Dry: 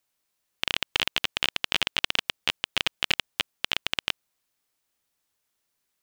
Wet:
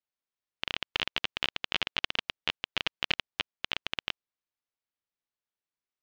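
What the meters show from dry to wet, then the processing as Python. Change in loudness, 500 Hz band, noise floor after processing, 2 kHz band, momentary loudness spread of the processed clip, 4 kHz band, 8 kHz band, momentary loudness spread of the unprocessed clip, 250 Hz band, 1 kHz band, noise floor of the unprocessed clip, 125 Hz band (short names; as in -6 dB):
-5.5 dB, -4.0 dB, under -85 dBFS, -5.0 dB, 6 LU, -6.0 dB, -13.5 dB, 6 LU, -4.0 dB, -4.0 dB, -79 dBFS, -4.0 dB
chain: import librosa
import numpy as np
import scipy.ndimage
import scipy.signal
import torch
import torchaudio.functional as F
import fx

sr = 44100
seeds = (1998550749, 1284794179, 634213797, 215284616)

y = scipy.signal.sosfilt(scipy.signal.bessel(8, 4100.0, 'lowpass', norm='mag', fs=sr, output='sos'), x)
y = fx.upward_expand(y, sr, threshold_db=-47.0, expansion=1.5)
y = F.gain(torch.from_numpy(y), -2.0).numpy()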